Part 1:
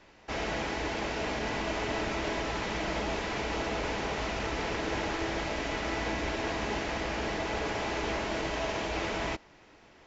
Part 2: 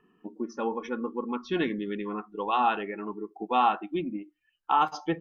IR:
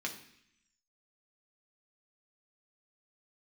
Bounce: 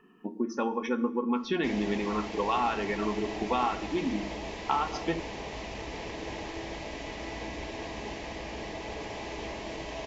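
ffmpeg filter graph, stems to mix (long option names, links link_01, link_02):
-filter_complex "[0:a]equalizer=frequency=1400:width_type=o:width=0.29:gain=-14.5,adelay=1350,volume=-5dB[link_01];[1:a]acompressor=threshold=-31dB:ratio=5,volume=2dB,asplit=2[link_02][link_03];[link_03]volume=-5dB[link_04];[2:a]atrim=start_sample=2205[link_05];[link_04][link_05]afir=irnorm=-1:irlink=0[link_06];[link_01][link_02][link_06]amix=inputs=3:normalize=0"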